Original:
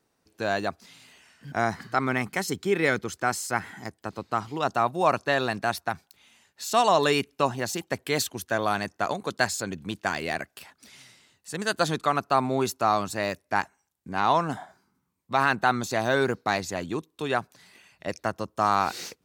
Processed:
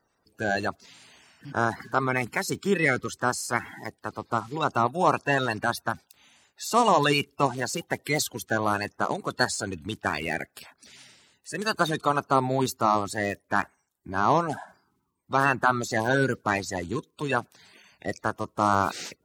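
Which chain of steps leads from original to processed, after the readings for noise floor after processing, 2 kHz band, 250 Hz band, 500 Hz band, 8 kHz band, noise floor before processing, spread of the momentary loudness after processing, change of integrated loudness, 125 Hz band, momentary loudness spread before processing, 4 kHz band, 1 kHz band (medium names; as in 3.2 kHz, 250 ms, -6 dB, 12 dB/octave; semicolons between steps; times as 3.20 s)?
-73 dBFS, +1.0 dB, +1.5 dB, -0.5 dB, +0.5 dB, -75 dBFS, 10 LU, +0.5 dB, +2.5 dB, 10 LU, -1.0 dB, 0.0 dB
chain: coarse spectral quantiser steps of 30 dB; trim +1 dB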